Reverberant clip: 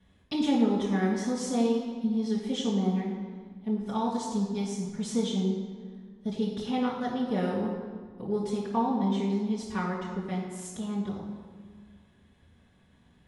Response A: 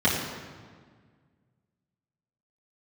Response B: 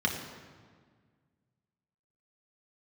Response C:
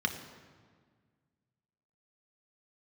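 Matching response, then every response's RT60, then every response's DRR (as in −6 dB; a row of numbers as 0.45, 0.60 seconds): A; 1.7, 1.7, 1.7 seconds; −9.5, −0.5, 4.5 decibels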